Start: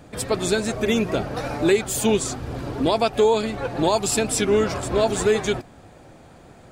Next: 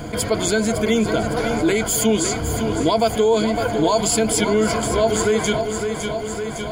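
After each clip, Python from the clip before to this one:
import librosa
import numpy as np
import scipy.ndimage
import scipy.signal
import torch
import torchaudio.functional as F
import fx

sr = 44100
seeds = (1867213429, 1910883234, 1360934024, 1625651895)

y = fx.ripple_eq(x, sr, per_octave=1.8, db=12)
y = fx.echo_feedback(y, sr, ms=558, feedback_pct=52, wet_db=-12.0)
y = fx.env_flatten(y, sr, amount_pct=50)
y = F.gain(torch.from_numpy(y), -3.0).numpy()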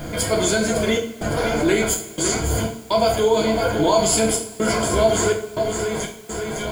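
y = fx.step_gate(x, sr, bpm=62, pattern='xxxx.xxx.xx.xx', floor_db=-60.0, edge_ms=4.5)
y = fx.rev_double_slope(y, sr, seeds[0], early_s=0.43, late_s=2.2, knee_db=-20, drr_db=-0.5)
y = fx.quant_dither(y, sr, seeds[1], bits=8, dither='triangular')
y = F.gain(torch.from_numpy(y), -2.0).numpy()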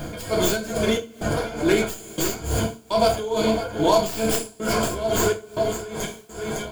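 y = fx.tracing_dist(x, sr, depth_ms=0.12)
y = fx.notch(y, sr, hz=2000.0, q=12.0)
y = y * (1.0 - 0.76 / 2.0 + 0.76 / 2.0 * np.cos(2.0 * np.pi * 2.3 * (np.arange(len(y)) / sr)))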